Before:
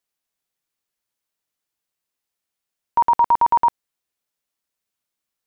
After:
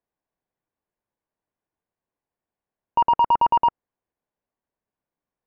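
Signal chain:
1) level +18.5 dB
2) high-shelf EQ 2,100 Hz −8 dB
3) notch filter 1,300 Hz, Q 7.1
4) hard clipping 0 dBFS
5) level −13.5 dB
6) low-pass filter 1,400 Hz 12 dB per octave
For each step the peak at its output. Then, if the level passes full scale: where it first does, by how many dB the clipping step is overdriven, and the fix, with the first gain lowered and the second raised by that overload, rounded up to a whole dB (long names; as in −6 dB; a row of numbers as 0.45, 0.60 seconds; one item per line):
+8.0, +7.0, +7.0, 0.0, −13.5, −13.0 dBFS
step 1, 7.0 dB
step 1 +11.5 dB, step 5 −6.5 dB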